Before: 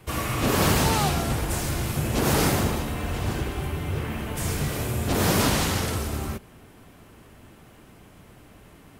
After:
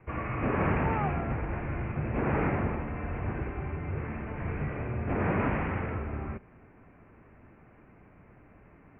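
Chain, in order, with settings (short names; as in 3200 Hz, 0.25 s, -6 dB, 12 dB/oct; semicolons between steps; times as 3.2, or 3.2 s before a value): steep low-pass 2500 Hz 72 dB/oct; gain -5.5 dB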